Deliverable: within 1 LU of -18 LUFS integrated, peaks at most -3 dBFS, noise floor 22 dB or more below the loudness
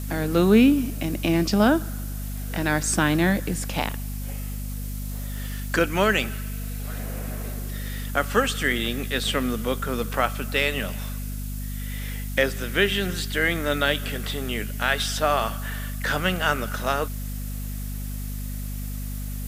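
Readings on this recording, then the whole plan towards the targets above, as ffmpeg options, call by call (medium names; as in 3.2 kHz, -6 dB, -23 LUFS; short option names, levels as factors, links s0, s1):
hum 50 Hz; highest harmonic 250 Hz; hum level -28 dBFS; noise floor -31 dBFS; noise floor target -47 dBFS; loudness -25.0 LUFS; peak level -6.5 dBFS; loudness target -18.0 LUFS
-> -af "bandreject=f=50:t=h:w=6,bandreject=f=100:t=h:w=6,bandreject=f=150:t=h:w=6,bandreject=f=200:t=h:w=6,bandreject=f=250:t=h:w=6"
-af "afftdn=nr=16:nf=-31"
-af "volume=2.24,alimiter=limit=0.708:level=0:latency=1"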